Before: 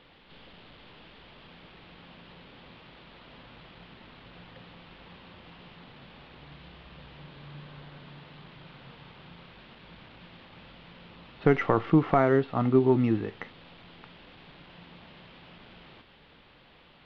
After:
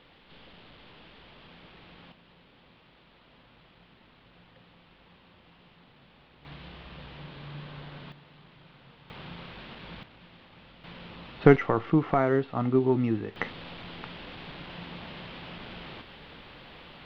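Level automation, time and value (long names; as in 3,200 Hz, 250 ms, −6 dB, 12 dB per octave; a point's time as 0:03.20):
−0.5 dB
from 0:02.12 −7.5 dB
from 0:06.45 +3.5 dB
from 0:08.12 −5.5 dB
from 0:09.10 +6.5 dB
from 0:10.03 −3 dB
from 0:10.84 +5 dB
from 0:11.56 −2 dB
from 0:13.36 +8.5 dB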